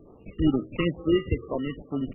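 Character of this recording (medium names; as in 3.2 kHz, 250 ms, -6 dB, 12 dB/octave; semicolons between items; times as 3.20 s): aliases and images of a low sample rate 1.6 kHz, jitter 0%; phasing stages 2, 2.2 Hz, lowest notch 730–2200 Hz; MP3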